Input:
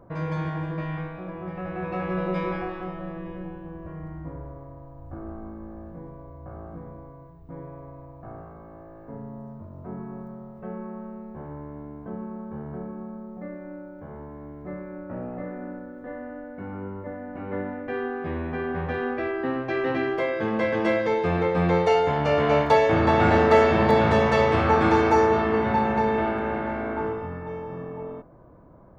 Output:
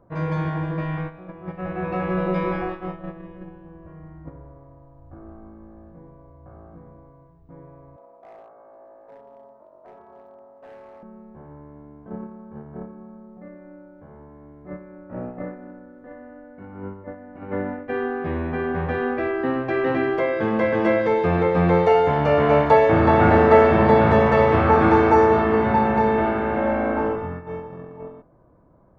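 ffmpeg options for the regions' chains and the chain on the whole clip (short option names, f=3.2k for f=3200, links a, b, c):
-filter_complex "[0:a]asettb=1/sr,asplit=3[a][b][c];[a]atrim=end=7.964[d];[b]atrim=start=7.96:end=11.03,asetpts=PTS-STARTPTS,afade=t=in:d=0.004:c=qsin,afade=t=out:st=3.066:d=0.004:c=qsin,highpass=f=590:t=q:w=2.9,volume=33.5dB,asoftclip=hard,volume=-33.5dB,tremolo=f=290:d=0.462[e];[c]atrim=start=11.026[f];[d][e]acrossfade=d=0.004:c1=hsin:c2=qsin[g];[g][f]acrossfade=d=0.004:c1=qsin:c2=hsin,asettb=1/sr,asplit=3[h][i][j];[h]atrim=end=26.574[k];[i]atrim=start=26.57:end=27.16,asetpts=PTS-STARTPTS,afade=t=in:d=0.004:c=qsin,afade=t=out:st=0.586:d=0.004:c=qsin,equalizer=f=610:t=o:w=0.4:g=9,aecho=1:1:3.8:0.61,atrim=end_sample=26019[l];[j]atrim=start=27.156[m];[k][l]acrossfade=d=0.004:c1=hsin:c2=qsin[n];[n][m]acrossfade=d=0.004:c1=qsin:c2=hsin,acrossover=split=2500[o][p];[p]acompressor=threshold=-45dB:ratio=4:attack=1:release=60[q];[o][q]amix=inputs=2:normalize=0,agate=range=-9dB:threshold=-33dB:ratio=16:detection=peak,highshelf=f=4.1k:g=-5.5,volume=4dB"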